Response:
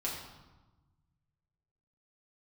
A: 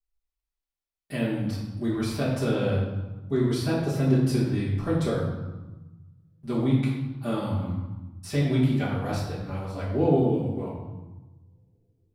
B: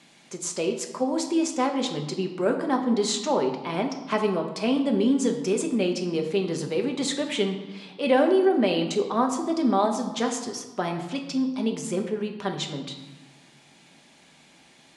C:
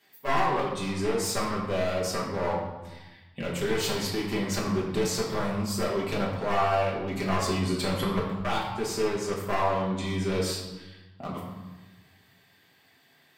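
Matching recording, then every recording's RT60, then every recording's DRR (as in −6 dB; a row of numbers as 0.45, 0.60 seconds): C; 1.1, 1.2, 1.1 seconds; −12.0, 3.0, −5.5 decibels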